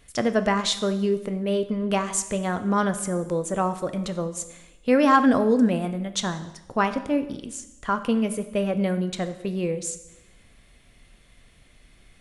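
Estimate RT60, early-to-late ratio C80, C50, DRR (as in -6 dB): 0.95 s, 14.5 dB, 12.5 dB, 9.0 dB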